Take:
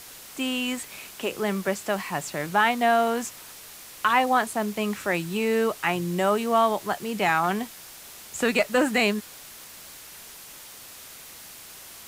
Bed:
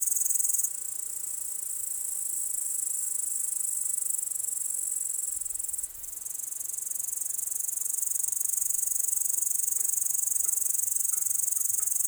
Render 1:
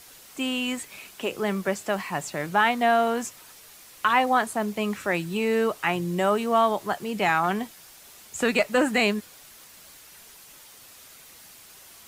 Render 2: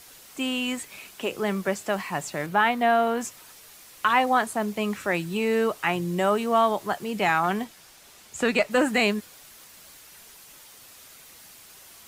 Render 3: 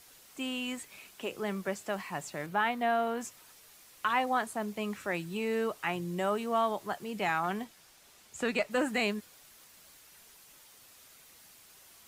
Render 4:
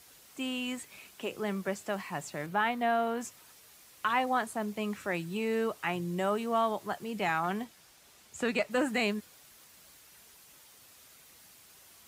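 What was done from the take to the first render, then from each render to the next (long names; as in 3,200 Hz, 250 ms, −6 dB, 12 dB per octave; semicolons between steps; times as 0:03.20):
broadband denoise 6 dB, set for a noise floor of −45 dBFS
0:02.46–0:03.21: parametric band 6,900 Hz −6 dB 1.5 octaves; 0:07.64–0:08.71: high-shelf EQ 10,000 Hz −8 dB
level −8 dB
high-pass filter 43 Hz; low-shelf EQ 220 Hz +3 dB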